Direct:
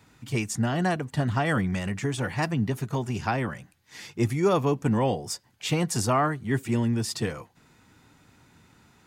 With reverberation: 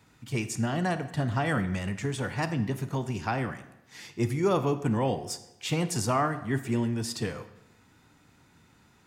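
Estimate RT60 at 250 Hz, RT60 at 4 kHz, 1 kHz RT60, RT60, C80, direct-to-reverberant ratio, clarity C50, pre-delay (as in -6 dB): 0.95 s, 0.75 s, 0.90 s, 0.90 s, 14.5 dB, 10.5 dB, 12.5 dB, 31 ms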